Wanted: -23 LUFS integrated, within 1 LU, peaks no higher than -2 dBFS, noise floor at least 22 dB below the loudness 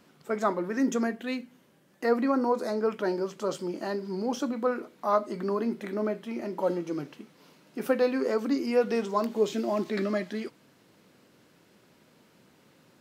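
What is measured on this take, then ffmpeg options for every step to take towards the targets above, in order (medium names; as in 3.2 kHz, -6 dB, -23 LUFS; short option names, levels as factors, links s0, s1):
loudness -29.5 LUFS; peak level -12.0 dBFS; loudness target -23.0 LUFS
-> -af "volume=2.11"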